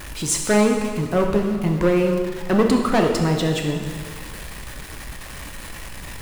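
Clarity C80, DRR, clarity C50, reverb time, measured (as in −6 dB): 6.0 dB, 2.0 dB, 4.5 dB, 1.8 s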